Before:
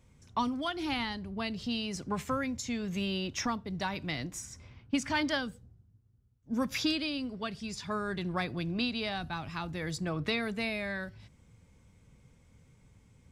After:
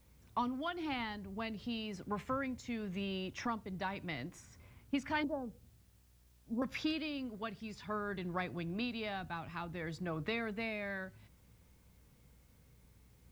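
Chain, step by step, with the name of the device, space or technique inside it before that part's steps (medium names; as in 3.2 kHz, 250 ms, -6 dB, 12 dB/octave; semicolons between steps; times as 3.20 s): 5.24–6.62 s: steep low-pass 910 Hz 36 dB/octave; tone controls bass -3 dB, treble -14 dB; video cassette with head-switching buzz (mains buzz 60 Hz, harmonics 35, -63 dBFS -9 dB/octave; white noise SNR 33 dB); trim -4 dB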